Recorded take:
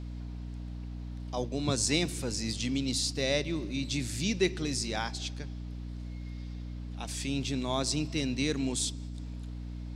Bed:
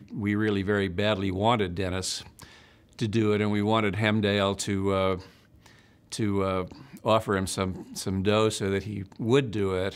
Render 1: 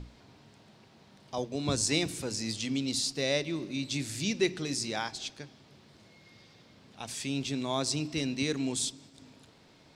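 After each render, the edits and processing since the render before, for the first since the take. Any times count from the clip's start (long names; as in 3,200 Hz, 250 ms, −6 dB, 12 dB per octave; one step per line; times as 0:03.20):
mains-hum notches 60/120/180/240/300 Hz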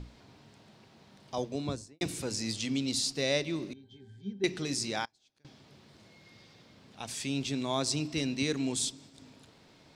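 0:01.47–0:02.01: fade out and dull
0:03.73–0:04.44: resonances in every octave G, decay 0.17 s
0:05.05–0:05.45: gate with flip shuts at −37 dBFS, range −30 dB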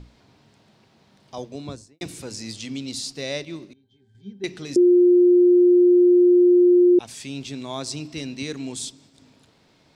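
0:03.45–0:04.15: expander for the loud parts, over −46 dBFS
0:04.76–0:06.99: beep over 355 Hz −11 dBFS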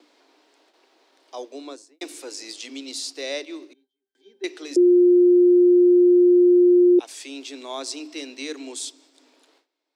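noise gate with hold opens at −48 dBFS
Butterworth high-pass 280 Hz 72 dB per octave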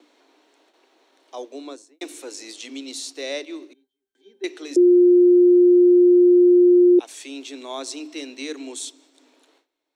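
low-shelf EQ 230 Hz +4.5 dB
notch filter 4,900 Hz, Q 7.2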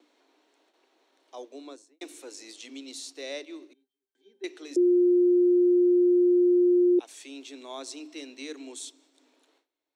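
level −7.5 dB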